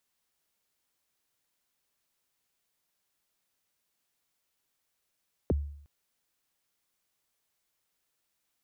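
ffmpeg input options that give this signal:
-f lavfi -i "aevalsrc='0.0891*pow(10,-3*t/0.65)*sin(2*PI*(600*0.024/log(72/600)*(exp(log(72/600)*min(t,0.024)/0.024)-1)+72*max(t-0.024,0)))':d=0.36:s=44100"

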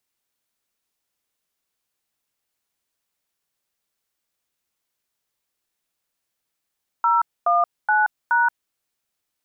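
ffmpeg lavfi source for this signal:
-f lavfi -i "aevalsrc='0.133*clip(min(mod(t,0.423),0.177-mod(t,0.423))/0.002,0,1)*(eq(floor(t/0.423),0)*(sin(2*PI*941*mod(t,0.423))+sin(2*PI*1336*mod(t,0.423)))+eq(floor(t/0.423),1)*(sin(2*PI*697*mod(t,0.423))+sin(2*PI*1209*mod(t,0.423)))+eq(floor(t/0.423),2)*(sin(2*PI*852*mod(t,0.423))+sin(2*PI*1477*mod(t,0.423)))+eq(floor(t/0.423),3)*(sin(2*PI*941*mod(t,0.423))+sin(2*PI*1477*mod(t,0.423))))':d=1.692:s=44100"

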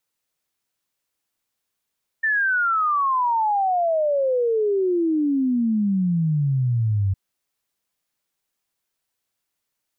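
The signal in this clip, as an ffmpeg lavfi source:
-f lavfi -i "aevalsrc='0.133*clip(min(t,4.91-t)/0.01,0,1)*sin(2*PI*1800*4.91/log(94/1800)*(exp(log(94/1800)*t/4.91)-1))':d=4.91:s=44100"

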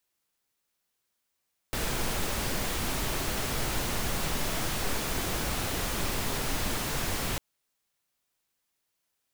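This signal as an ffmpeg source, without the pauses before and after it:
-f lavfi -i "anoisesrc=c=pink:a=0.162:d=5.65:r=44100:seed=1"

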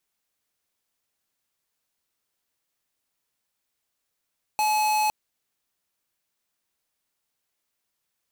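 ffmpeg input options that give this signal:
-f lavfi -i "aevalsrc='0.075*(2*lt(mod(854*t,1),0.5)-1)':d=0.51:s=44100"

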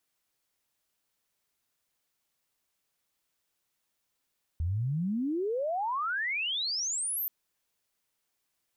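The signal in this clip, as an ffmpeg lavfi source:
-f lavfi -i "aevalsrc='pow(10,(-27-2.5*t/2.68)/20)*sin(2*PI*77*2.68/log(14000/77)*(exp(log(14000/77)*t/2.68)-1))':d=2.68:s=44100"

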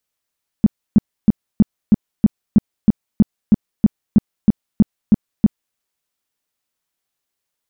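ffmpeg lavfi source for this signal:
-f lavfi -i "aevalsrc='0.562*sin(2*PI*212*mod(t,0.32))*lt(mod(t,0.32),5/212)':d=5.12:s=44100"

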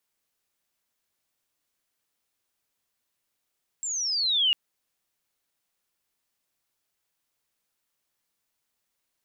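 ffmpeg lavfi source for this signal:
-f lavfi -i "aevalsrc='pow(10,(-28.5+10*t/0.7)/20)*sin(2*PI*7600*0.7/log(2800/7600)*(exp(log(2800/7600)*t/0.7)-1))':d=0.7:s=44100"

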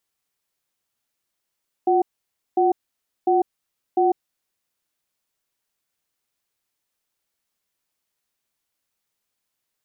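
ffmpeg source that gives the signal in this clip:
-f lavfi -i "aevalsrc='0.133*(sin(2*PI*356*t)+sin(2*PI*750*t))*clip(min(mod(t,0.7),0.15-mod(t,0.7))/0.005,0,1)':d=2.27:s=44100"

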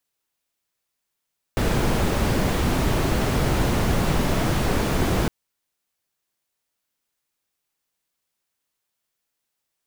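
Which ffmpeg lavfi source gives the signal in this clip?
-f lavfi -i "anoisesrc=c=brown:a=0.442:d=3.71:r=44100:seed=1"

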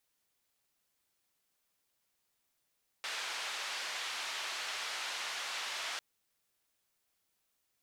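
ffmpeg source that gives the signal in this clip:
-f lavfi -i "anoisesrc=c=white:d=2.95:r=44100:seed=1,highpass=f=820,lowpass=f=4100,volume=-26.7dB"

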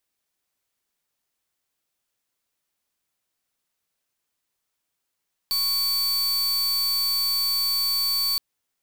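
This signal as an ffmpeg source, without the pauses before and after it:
-f lavfi -i "aevalsrc='0.0668*(2*lt(mod(4520*t,1),0.45)-1)':d=2.87:s=44100"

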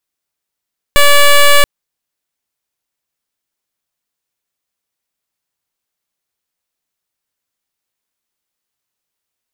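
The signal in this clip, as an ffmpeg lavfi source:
-f lavfi -i "aevalsrc='0.531*(2*lt(mod(575*t,1),0.1)-1)':d=0.68:s=44100"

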